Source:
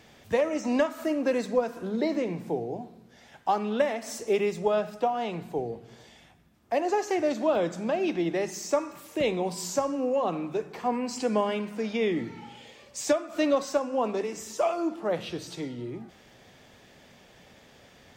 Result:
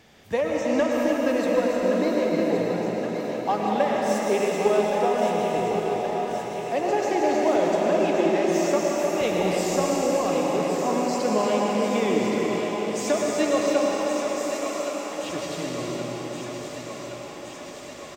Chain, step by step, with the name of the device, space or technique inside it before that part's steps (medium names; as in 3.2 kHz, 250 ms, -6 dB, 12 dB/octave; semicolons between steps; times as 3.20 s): 13.86–15.24 s: amplifier tone stack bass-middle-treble 10-0-10; cave (delay 310 ms -8 dB; reverberation RT60 4.9 s, pre-delay 97 ms, DRR -2 dB); thinning echo 1121 ms, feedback 74%, high-pass 310 Hz, level -8 dB